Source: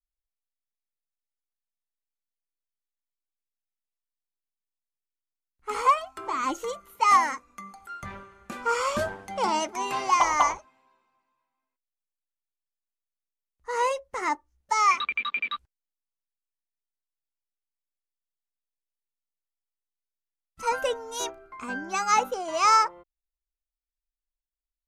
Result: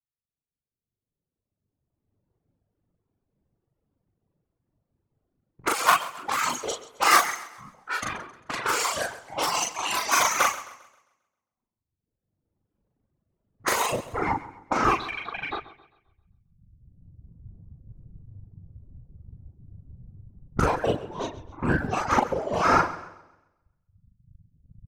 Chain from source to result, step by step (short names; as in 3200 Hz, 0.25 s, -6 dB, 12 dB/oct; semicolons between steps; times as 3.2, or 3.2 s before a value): cycle switcher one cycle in 3, muted; recorder AGC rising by 13 dB/s; tilt +3.5 dB/oct, from 13.91 s -3 dB/oct; whisperiser; doubler 41 ms -2.5 dB; multi-head echo 71 ms, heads first and second, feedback 53%, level -16.5 dB; reverb removal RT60 1.5 s; low-pass opened by the level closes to 380 Hz, open at -23 dBFS; bell 100 Hz +5.5 dB 1.3 oct; warbling echo 0.133 s, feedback 39%, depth 79 cents, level -17 dB